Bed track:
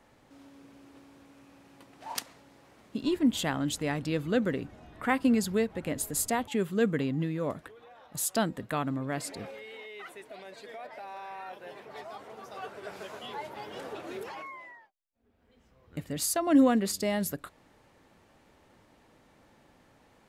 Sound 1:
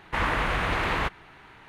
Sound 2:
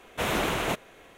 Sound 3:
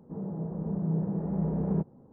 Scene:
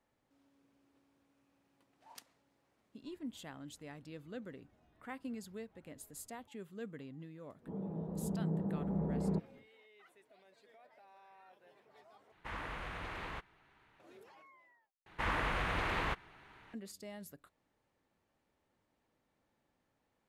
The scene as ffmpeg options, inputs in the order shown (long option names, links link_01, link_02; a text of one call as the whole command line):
ffmpeg -i bed.wav -i cue0.wav -i cue1.wav -i cue2.wav -filter_complex "[1:a]asplit=2[link_01][link_02];[0:a]volume=-19dB[link_03];[3:a]equalizer=frequency=140:width_type=o:width=0.42:gain=-6.5[link_04];[link_03]asplit=3[link_05][link_06][link_07];[link_05]atrim=end=12.324[link_08];[link_01]atrim=end=1.68,asetpts=PTS-STARTPTS,volume=-17.5dB[link_09];[link_06]atrim=start=13.996:end=15.064[link_10];[link_02]atrim=end=1.68,asetpts=PTS-STARTPTS,volume=-9dB[link_11];[link_07]atrim=start=16.736[link_12];[link_04]atrim=end=2.12,asetpts=PTS-STARTPTS,volume=-4.5dB,afade=type=in:duration=0.1,afade=type=out:start_time=2.02:duration=0.1,adelay=7570[link_13];[link_08][link_09]acrossfade=duration=0.004:curve1=hsin:curve2=hsin[link_14];[link_14][link_10]acrossfade=duration=0.004:curve1=hsin:curve2=hsin[link_15];[link_15][link_11]acrossfade=duration=0.004:curve1=hsin:curve2=hsin[link_16];[link_16][link_12]acrossfade=duration=0.004:curve1=hsin:curve2=hsin[link_17];[link_17][link_13]amix=inputs=2:normalize=0" out.wav